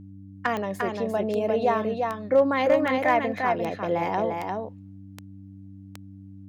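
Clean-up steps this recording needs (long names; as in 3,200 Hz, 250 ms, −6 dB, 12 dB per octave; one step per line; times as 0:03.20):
clipped peaks rebuilt −11.5 dBFS
click removal
hum removal 97.1 Hz, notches 3
echo removal 349 ms −4 dB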